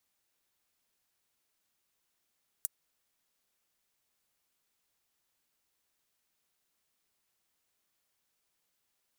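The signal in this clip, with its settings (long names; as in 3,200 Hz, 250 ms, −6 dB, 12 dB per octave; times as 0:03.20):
closed synth hi-hat, high-pass 8,400 Hz, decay 0.03 s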